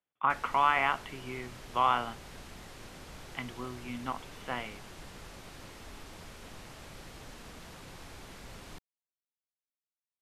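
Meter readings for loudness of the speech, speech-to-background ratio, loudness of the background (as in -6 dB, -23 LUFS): -32.0 LUFS, 16.5 dB, -48.5 LUFS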